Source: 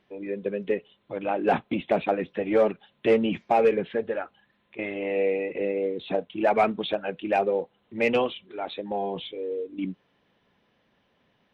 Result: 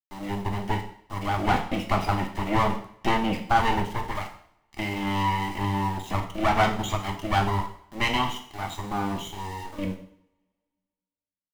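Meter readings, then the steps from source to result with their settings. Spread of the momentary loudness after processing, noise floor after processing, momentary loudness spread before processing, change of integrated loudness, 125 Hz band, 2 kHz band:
11 LU, under -85 dBFS, 12 LU, -0.5 dB, +12.5 dB, +3.5 dB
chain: comb filter that takes the minimum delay 0.99 ms; small samples zeroed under -43 dBFS; two-slope reverb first 0.59 s, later 1.9 s, from -28 dB, DRR 3 dB; trim +1 dB

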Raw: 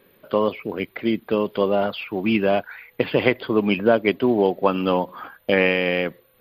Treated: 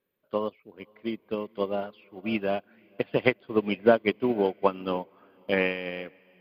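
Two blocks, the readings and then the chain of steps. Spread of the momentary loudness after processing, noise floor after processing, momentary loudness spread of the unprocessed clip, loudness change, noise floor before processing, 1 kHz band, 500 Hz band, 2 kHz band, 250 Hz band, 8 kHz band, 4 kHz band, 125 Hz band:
15 LU, -67 dBFS, 9 LU, -6.5 dB, -60 dBFS, -6.5 dB, -6.5 dB, -7.0 dB, -8.0 dB, no reading, -8.5 dB, -8.0 dB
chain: echo that smears into a reverb 527 ms, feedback 45%, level -14.5 dB; upward expansion 2.5:1, over -29 dBFS

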